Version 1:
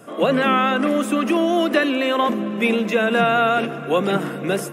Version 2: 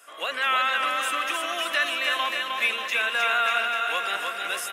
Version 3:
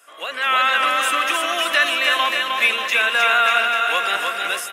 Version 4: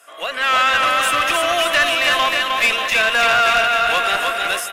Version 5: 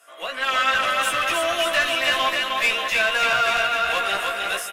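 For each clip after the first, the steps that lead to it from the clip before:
high-pass filter 1,500 Hz 12 dB per octave; on a send: bouncing-ball delay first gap 310 ms, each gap 0.9×, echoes 5
automatic gain control gain up to 7.5 dB
parametric band 670 Hz +6.5 dB 0.23 octaves; tube saturation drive 13 dB, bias 0.35; level +4 dB
double-tracking delay 15 ms −3 dB; level −6.5 dB

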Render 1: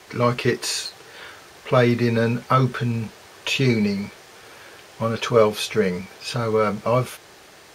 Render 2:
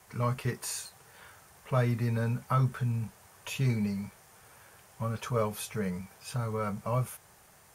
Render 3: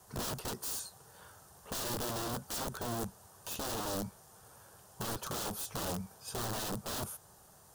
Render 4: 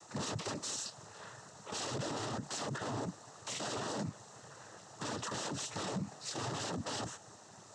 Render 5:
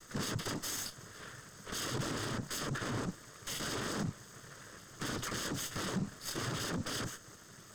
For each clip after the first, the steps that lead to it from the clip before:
drawn EQ curve 110 Hz 0 dB, 190 Hz −3 dB, 320 Hz −15 dB, 880 Hz −5 dB, 4,100 Hz −14 dB, 9,900 Hz +2 dB; level −4.5 dB
wrap-around overflow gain 31 dB; parametric band 2,200 Hz −15 dB 0.7 octaves
cochlear-implant simulation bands 12; brickwall limiter −36.5 dBFS, peak gain reduction 11 dB; level +6.5 dB
lower of the sound and its delayed copy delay 0.61 ms; level +3 dB

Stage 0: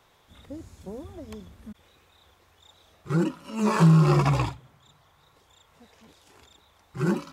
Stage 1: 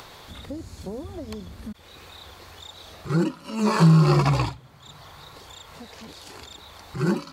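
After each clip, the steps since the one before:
parametric band 4,400 Hz +9 dB 0.23 octaves
in parallel at +3 dB: upward compression, threshold −27 dBFS
on the sum: level −6 dB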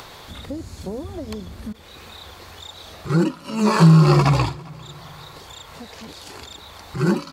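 repeating echo 398 ms, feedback 44%, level −24 dB
level +4 dB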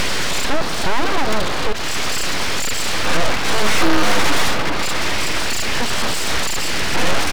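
downsampling to 11,025 Hz
mid-hump overdrive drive 41 dB, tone 2,000 Hz, clips at −2 dBFS
full-wave rectification
level −1.5 dB

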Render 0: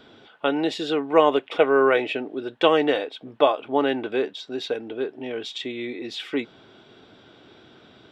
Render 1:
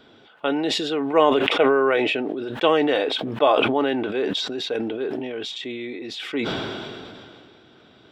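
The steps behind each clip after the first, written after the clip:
level that may fall only so fast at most 24 dB per second
level −1.5 dB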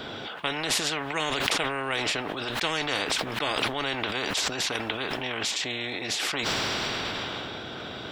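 every bin compressed towards the loudest bin 4 to 1
level −4.5 dB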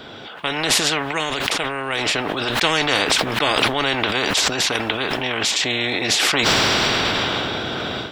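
automatic gain control gain up to 13 dB
level −1 dB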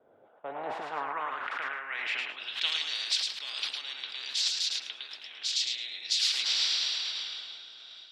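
feedback echo with a high-pass in the loop 108 ms, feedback 22%, high-pass 550 Hz, level −3 dB
band-pass filter sweep 560 Hz → 4,400 Hz, 0:00.31–0:02.98
multiband upward and downward expander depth 70%
level −7 dB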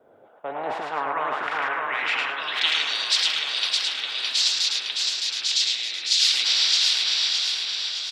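repeating echo 614 ms, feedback 48%, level −3.5 dB
level +7 dB

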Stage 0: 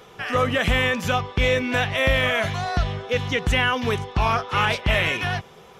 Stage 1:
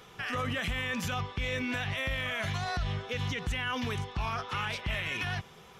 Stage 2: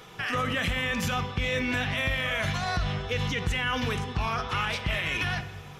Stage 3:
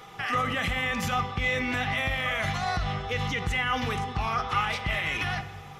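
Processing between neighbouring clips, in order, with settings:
parametric band 520 Hz −6.5 dB 1.7 octaves; brickwall limiter −21 dBFS, peak gain reduction 11 dB; level −3 dB
rectangular room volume 1,400 cubic metres, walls mixed, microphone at 0.57 metres; level +4.5 dB
hollow resonant body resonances 800/1,200/2,000 Hz, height 12 dB, ringing for 60 ms; level −1.5 dB

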